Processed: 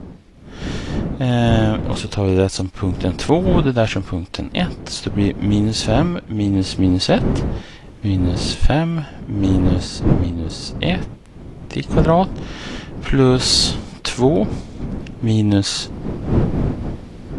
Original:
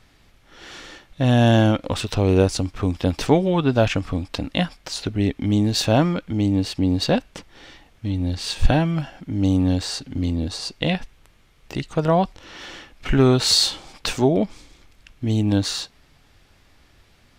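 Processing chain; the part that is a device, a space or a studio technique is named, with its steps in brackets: smartphone video outdoors (wind noise 230 Hz; AGC gain up to 9 dB; gain -1 dB; AAC 48 kbps 24000 Hz)

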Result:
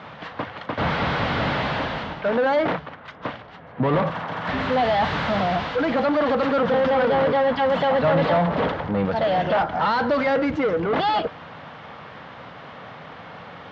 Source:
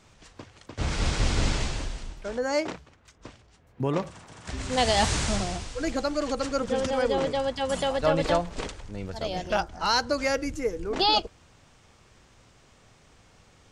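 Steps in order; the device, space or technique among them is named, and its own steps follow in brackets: 8.47–9.05 tilt shelf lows +4.5 dB, about 1300 Hz; overdrive pedal into a guitar cabinet (overdrive pedal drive 33 dB, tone 1200 Hz, clips at -10.5 dBFS; speaker cabinet 81–3600 Hz, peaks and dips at 160 Hz +6 dB, 370 Hz -9 dB, 2500 Hz -5 dB)

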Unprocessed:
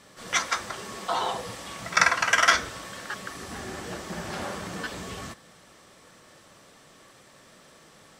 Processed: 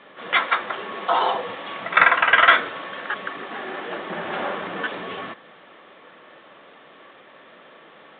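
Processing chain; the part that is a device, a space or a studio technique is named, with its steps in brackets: 3.43–3.96 HPF 250 Hz 6 dB/oct; telephone (BPF 300–3600 Hz; soft clip -10.5 dBFS, distortion -17 dB; gain +8 dB; µ-law 64 kbps 8000 Hz)

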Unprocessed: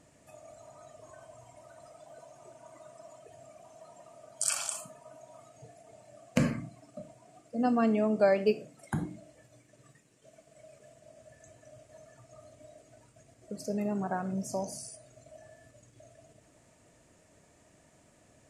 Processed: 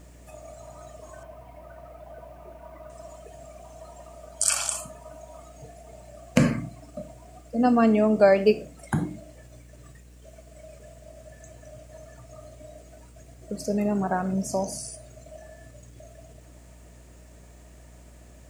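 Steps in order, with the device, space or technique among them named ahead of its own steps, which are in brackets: 1.23–2.9 inverse Chebyshev low-pass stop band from 5400 Hz, stop band 40 dB; video cassette with head-switching buzz (buzz 60 Hz, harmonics 12, -57 dBFS -9 dB/oct; white noise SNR 39 dB); gain +7 dB

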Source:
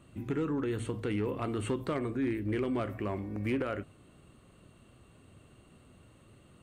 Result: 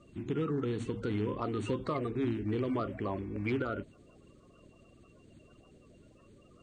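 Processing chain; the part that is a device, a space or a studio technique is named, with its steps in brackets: clip after many re-uploads (LPF 7400 Hz 24 dB/oct; bin magnitudes rounded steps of 30 dB)

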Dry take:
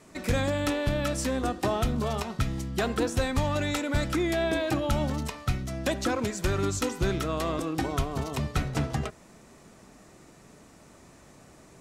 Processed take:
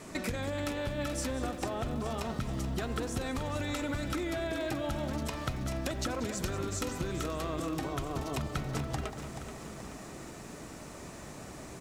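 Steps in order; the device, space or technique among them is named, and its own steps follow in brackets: serial compression, leveller first (compressor, threshold -28 dBFS, peak gain reduction 7.5 dB; compressor 5:1, threshold -40 dBFS, peak gain reduction 12.5 dB); 1.52–2.12 high shelf 5900 Hz -9.5 dB; outdoor echo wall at 32 m, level -11 dB; lo-fi delay 0.43 s, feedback 55%, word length 11-bit, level -10 dB; gain +7 dB

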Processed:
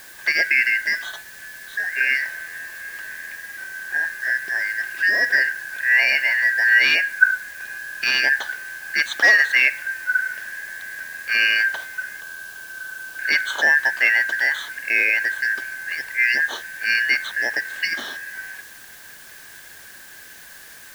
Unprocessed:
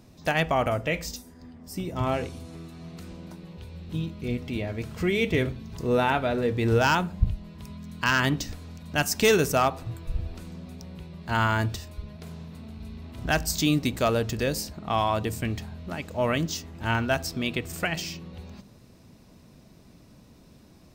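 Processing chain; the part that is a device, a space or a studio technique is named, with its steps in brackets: 12.21–13.19 Chebyshev band-stop 120–4200 Hz, order 2; split-band scrambled radio (four-band scrambler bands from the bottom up 3142; BPF 390–3000 Hz; white noise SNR 22 dB); gain +7 dB

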